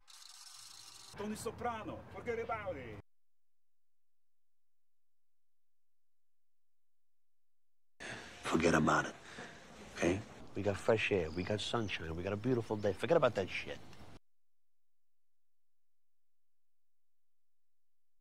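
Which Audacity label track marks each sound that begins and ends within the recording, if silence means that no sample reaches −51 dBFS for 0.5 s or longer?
8.000000	14.170000	sound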